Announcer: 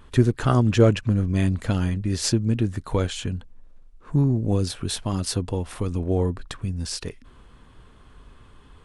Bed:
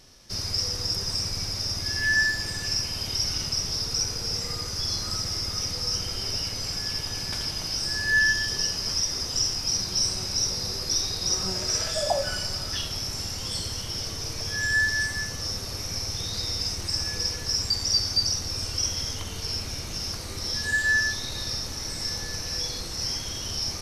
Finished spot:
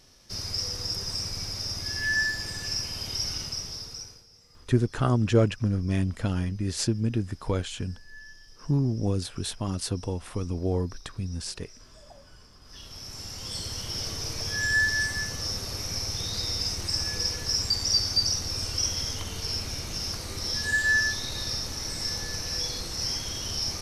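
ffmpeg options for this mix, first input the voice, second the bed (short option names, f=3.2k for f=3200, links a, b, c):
-filter_complex "[0:a]adelay=4550,volume=-4.5dB[a];[1:a]volume=23dB,afade=t=out:st=3.28:d=0.98:silence=0.0668344,afade=t=in:st=12.61:d=1.43:silence=0.0473151[b];[a][b]amix=inputs=2:normalize=0"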